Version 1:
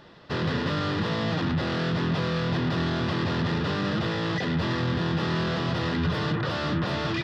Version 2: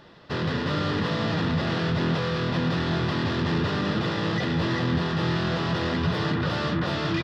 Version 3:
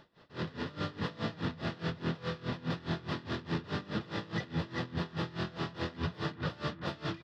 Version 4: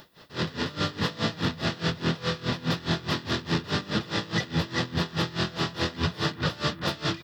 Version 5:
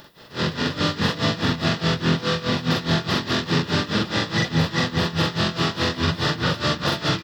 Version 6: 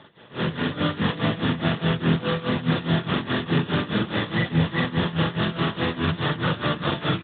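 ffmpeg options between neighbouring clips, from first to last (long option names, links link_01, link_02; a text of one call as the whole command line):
ffmpeg -i in.wav -af "aecho=1:1:385:0.562" out.wav
ffmpeg -i in.wav -af "aeval=exprs='val(0)*pow(10,-21*(0.5-0.5*cos(2*PI*4.8*n/s))/20)':channel_layout=same,volume=-6dB" out.wav
ffmpeg -i in.wav -af "aemphasis=mode=production:type=75fm,volume=8dB" out.wav
ffmpeg -i in.wav -af "aecho=1:1:43.73|186.6:0.891|0.355,volume=3.5dB" out.wav
ffmpeg -i in.wav -ar 8000 -c:a libopencore_amrnb -b:a 12200 out.amr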